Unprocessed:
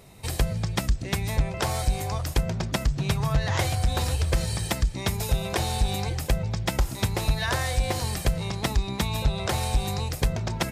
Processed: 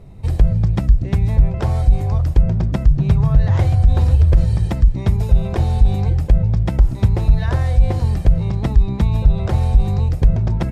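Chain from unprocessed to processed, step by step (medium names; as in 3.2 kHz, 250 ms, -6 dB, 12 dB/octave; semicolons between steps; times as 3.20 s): tilt EQ -4 dB/octave; in parallel at -1 dB: compressor with a negative ratio -8 dBFS, ratio -1; on the sum: trim -7.5 dB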